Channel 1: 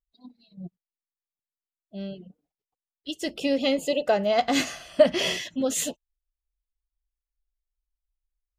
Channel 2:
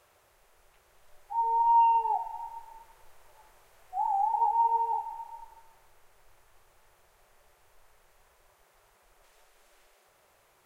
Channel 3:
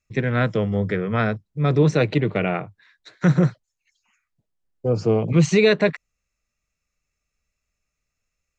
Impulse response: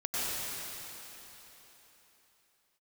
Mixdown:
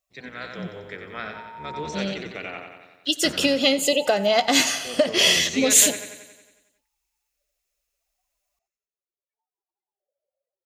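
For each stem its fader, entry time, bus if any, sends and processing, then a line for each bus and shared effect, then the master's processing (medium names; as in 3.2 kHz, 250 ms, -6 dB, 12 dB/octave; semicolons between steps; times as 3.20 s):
+2.0 dB, 0.00 s, no send, echo send -19.5 dB, compression 6:1, threshold -24 dBFS, peak gain reduction 12.5 dB
-12.5 dB, 0.00 s, no send, no echo send, loudest bins only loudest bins 8; stepped vowel filter 1.5 Hz
-15.5 dB, 0.00 s, no send, echo send -6 dB, octave divider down 1 oct, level +3 dB; high-pass 710 Hz 6 dB/octave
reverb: none
echo: feedback delay 91 ms, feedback 60%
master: level rider gain up to 4.5 dB; high-pass 120 Hz 6 dB/octave; treble shelf 2.1 kHz +9.5 dB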